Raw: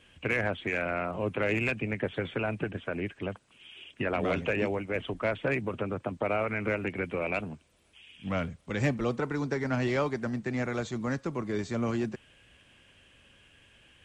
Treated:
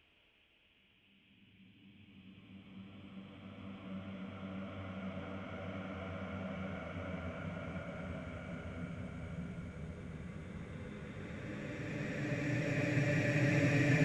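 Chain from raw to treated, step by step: level quantiser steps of 24 dB; low-pass opened by the level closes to 2100 Hz, open at -45.5 dBFS; Paulstretch 17×, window 0.50 s, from 7.98; gain +5.5 dB

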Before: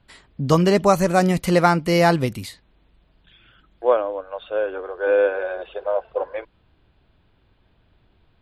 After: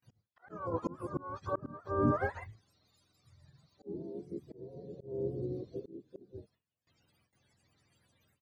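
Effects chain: spectrum mirrored in octaves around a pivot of 450 Hz; harmoniser -12 st -16 dB, -4 st -13 dB, +5 st -15 dB; auto swell 0.64 s; gate with hold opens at -54 dBFS; gain -8.5 dB

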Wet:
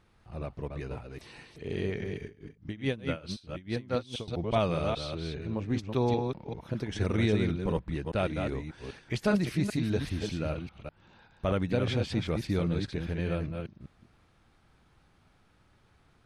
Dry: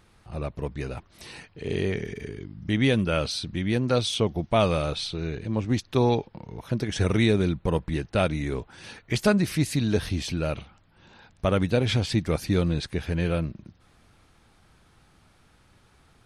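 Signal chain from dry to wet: reverse delay 0.198 s, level -5 dB; high shelf 5600 Hz -9 dB; 2.25–4.28 dB-linear tremolo 4.7 Hz, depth 20 dB; gain -6 dB

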